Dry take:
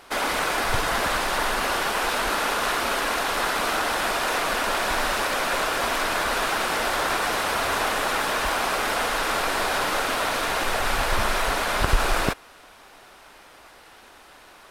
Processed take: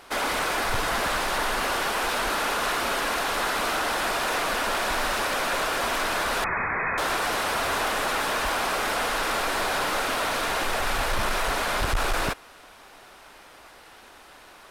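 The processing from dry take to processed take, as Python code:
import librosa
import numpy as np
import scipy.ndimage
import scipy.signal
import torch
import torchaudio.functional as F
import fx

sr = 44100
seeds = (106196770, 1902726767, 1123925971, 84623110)

y = 10.0 ** (-18.5 / 20.0) * np.tanh(x / 10.0 ** (-18.5 / 20.0))
y = fx.freq_invert(y, sr, carrier_hz=2500, at=(6.44, 6.98))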